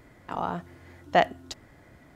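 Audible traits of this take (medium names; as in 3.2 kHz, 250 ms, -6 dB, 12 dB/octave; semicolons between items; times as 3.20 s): noise floor -56 dBFS; spectral tilt -3.0 dB/octave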